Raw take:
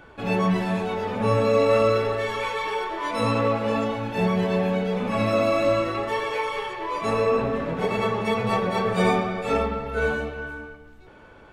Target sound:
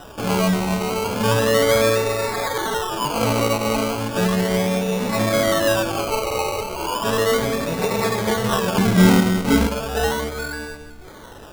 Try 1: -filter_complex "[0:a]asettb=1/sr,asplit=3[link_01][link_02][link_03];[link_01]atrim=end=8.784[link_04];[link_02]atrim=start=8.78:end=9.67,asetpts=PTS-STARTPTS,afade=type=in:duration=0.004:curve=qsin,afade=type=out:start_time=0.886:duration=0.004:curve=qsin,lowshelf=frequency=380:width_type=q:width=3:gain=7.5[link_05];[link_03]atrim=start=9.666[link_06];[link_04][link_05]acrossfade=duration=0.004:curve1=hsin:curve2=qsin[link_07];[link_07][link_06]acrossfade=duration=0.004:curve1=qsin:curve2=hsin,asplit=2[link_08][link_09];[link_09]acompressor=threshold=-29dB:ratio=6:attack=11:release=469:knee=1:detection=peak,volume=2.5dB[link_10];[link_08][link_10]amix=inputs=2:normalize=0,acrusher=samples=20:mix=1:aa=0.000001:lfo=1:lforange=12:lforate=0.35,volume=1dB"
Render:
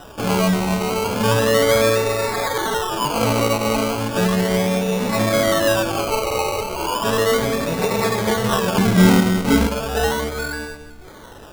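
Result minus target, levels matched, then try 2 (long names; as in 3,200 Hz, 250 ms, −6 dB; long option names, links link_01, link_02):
downward compressor: peak gain reduction −5 dB
-filter_complex "[0:a]asettb=1/sr,asplit=3[link_01][link_02][link_03];[link_01]atrim=end=8.784[link_04];[link_02]atrim=start=8.78:end=9.67,asetpts=PTS-STARTPTS,afade=type=in:duration=0.004:curve=qsin,afade=type=out:start_time=0.886:duration=0.004:curve=qsin,lowshelf=frequency=380:width_type=q:width=3:gain=7.5[link_05];[link_03]atrim=start=9.666[link_06];[link_04][link_05]acrossfade=duration=0.004:curve1=hsin:curve2=qsin[link_07];[link_07][link_06]acrossfade=duration=0.004:curve1=qsin:curve2=hsin,asplit=2[link_08][link_09];[link_09]acompressor=threshold=-35dB:ratio=6:attack=11:release=469:knee=1:detection=peak,volume=2.5dB[link_10];[link_08][link_10]amix=inputs=2:normalize=0,acrusher=samples=20:mix=1:aa=0.000001:lfo=1:lforange=12:lforate=0.35,volume=1dB"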